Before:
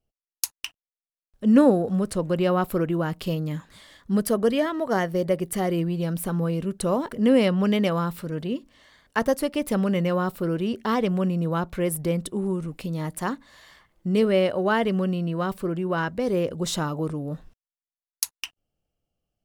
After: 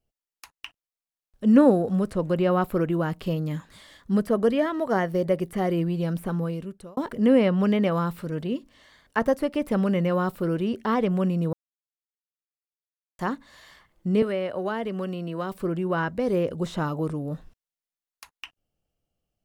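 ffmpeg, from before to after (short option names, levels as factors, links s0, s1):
-filter_complex "[0:a]asettb=1/sr,asplit=3[s0][s1][s2];[s0]atrim=end=14.224[s3];[s1]atrim=start=14.22:end=15.6,asetpts=PTS-STARTPTS,afade=t=in:d=0.004:c=qsin,afade=t=out:st=1.376:d=0.004:c=qsin,acrossover=split=220|760|2800[s4][s5][s6][s7];[s4]acompressor=threshold=0.00708:ratio=3[s8];[s5]acompressor=threshold=0.0316:ratio=3[s9];[s6]acompressor=threshold=0.0178:ratio=3[s10];[s7]acompressor=threshold=0.00355:ratio=3[s11];[s8][s9][s10][s11]amix=inputs=4:normalize=0[s12];[s2]atrim=start=15.596[s13];[s3][s12]acrossfade=d=0.004:c1=hsin:c2=qsin[s14];[s14][s13]acrossfade=d=0.004:c1=qsin:c2=hsin,asplit=4[s15][s16][s17][s18];[s15]atrim=end=6.97,asetpts=PTS-STARTPTS,afade=t=out:st=6.24:d=0.73[s19];[s16]atrim=start=6.97:end=11.53,asetpts=PTS-STARTPTS,afade=t=in:d=0.004:c=hsin,afade=t=out:st=4.556:d=0.004:c=hsin[s20];[s17]atrim=start=11.53:end=13.19,asetpts=PTS-STARTPTS,volume=0[s21];[s18]atrim=start=13.19,asetpts=PTS-STARTPTS,afade=t=in:d=0.004:c=hsin[s22];[s19][s20][s21][s22]concat=n=4:v=0:a=1,acrossover=split=2600[s23][s24];[s24]acompressor=threshold=0.00501:ratio=4:attack=1:release=60[s25];[s23][s25]amix=inputs=2:normalize=0"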